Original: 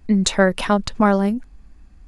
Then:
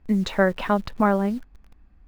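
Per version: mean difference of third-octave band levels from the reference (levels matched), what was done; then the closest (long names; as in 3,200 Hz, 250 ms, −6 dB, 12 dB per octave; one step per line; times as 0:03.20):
3.0 dB: low-pass filter 3,400 Hz 12 dB per octave
high-shelf EQ 2,600 Hz −6.5 dB
in parallel at −10 dB: bit-depth reduction 6 bits, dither none
on the sum: low-shelf EQ 500 Hz −3.5 dB
level −4 dB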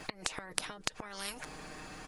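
12.5 dB: downward compressor 10 to 1, threshold −23 dBFS, peak gain reduction 13.5 dB
comb filter 6.5 ms, depth 65%
gate with flip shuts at −17 dBFS, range −24 dB
every bin compressed towards the loudest bin 10 to 1
level +9 dB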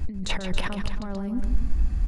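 9.5 dB: low-shelf EQ 200 Hz +11 dB
compressor whose output falls as the input rises −28 dBFS, ratio −1
on a send: loudspeakers that aren't time-aligned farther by 49 metres −9 dB, 94 metres −12 dB
on the sum: dynamic equaliser 8,400 Hz, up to −5 dB, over −50 dBFS, Q 0.74
level +2 dB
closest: first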